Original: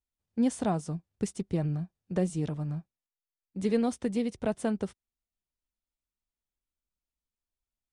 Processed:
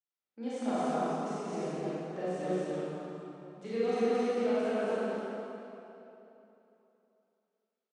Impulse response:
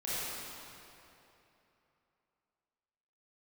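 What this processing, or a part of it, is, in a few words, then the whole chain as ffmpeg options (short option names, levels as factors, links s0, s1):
station announcement: -filter_complex "[0:a]highpass=360,lowpass=4900,equalizer=f=1300:t=o:w=0.28:g=5.5,aecho=1:1:221.6|265.3:0.794|0.562[s0];[1:a]atrim=start_sample=2205[s1];[s0][s1]afir=irnorm=-1:irlink=0,volume=0.501"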